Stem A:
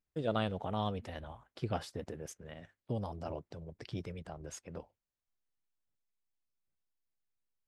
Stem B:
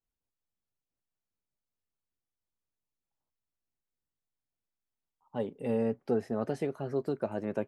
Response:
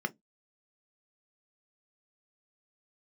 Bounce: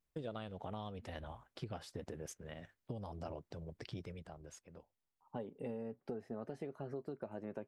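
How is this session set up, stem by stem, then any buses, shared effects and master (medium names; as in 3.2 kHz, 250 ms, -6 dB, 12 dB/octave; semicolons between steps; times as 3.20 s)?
-0.5 dB, 0.00 s, no send, auto duck -18 dB, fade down 1.50 s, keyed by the second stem
-0.5 dB, 0.00 s, no send, treble shelf 4.2 kHz -6.5 dB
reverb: none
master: compression 10:1, threshold -40 dBFS, peak gain reduction 15.5 dB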